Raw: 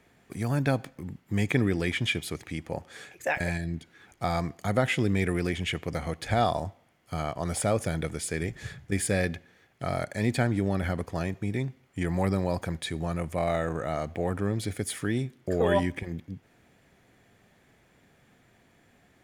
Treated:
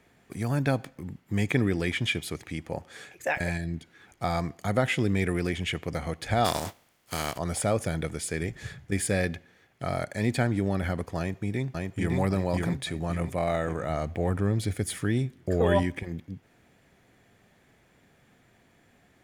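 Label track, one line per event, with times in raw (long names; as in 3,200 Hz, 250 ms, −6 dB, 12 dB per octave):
6.440000	7.370000	compressing power law on the bin magnitudes exponent 0.5
11.180000	12.170000	delay throw 560 ms, feedback 45%, level −2 dB
13.890000	15.830000	low-shelf EQ 91 Hz +10.5 dB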